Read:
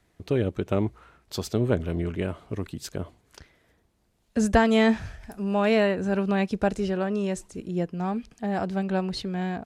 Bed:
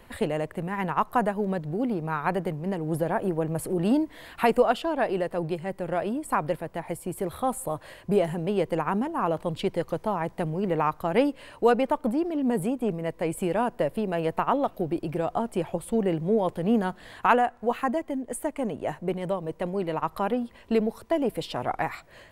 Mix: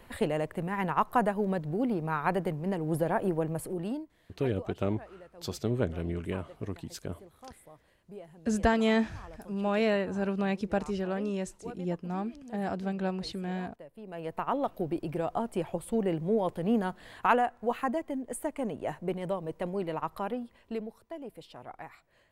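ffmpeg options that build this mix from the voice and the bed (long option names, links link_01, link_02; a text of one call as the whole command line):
ffmpeg -i stem1.wav -i stem2.wav -filter_complex "[0:a]adelay=4100,volume=-5.5dB[link_01];[1:a]volume=17dB,afade=type=out:start_time=3.33:duration=0.79:silence=0.0891251,afade=type=in:start_time=13.94:duration=0.76:silence=0.112202,afade=type=out:start_time=19.76:duration=1.26:silence=0.237137[link_02];[link_01][link_02]amix=inputs=2:normalize=0" out.wav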